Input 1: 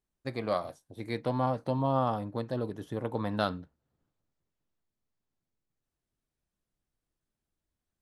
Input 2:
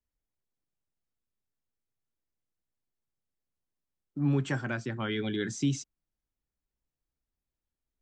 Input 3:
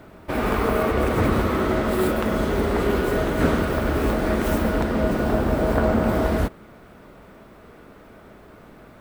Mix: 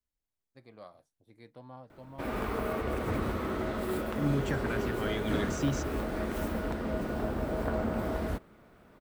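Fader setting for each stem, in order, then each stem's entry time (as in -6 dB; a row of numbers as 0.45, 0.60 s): -19.5, -3.0, -11.5 dB; 0.30, 0.00, 1.90 s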